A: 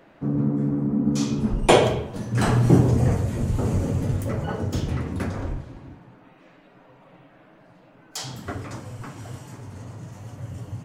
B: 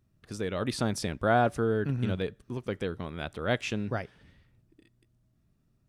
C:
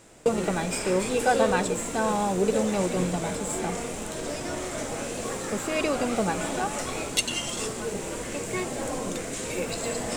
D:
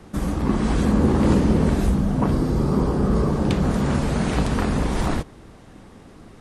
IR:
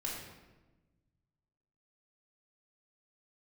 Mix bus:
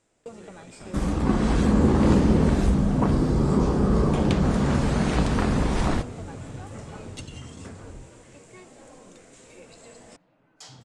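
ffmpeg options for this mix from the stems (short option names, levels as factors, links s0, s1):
-filter_complex "[0:a]acompressor=threshold=0.0631:ratio=2,adelay=2450,volume=0.237[s0];[1:a]volume=0.1[s1];[2:a]volume=0.133[s2];[3:a]adelay=800,volume=0.891[s3];[s0][s1][s2][s3]amix=inputs=4:normalize=0,lowpass=f=9400:w=0.5412,lowpass=f=9400:w=1.3066"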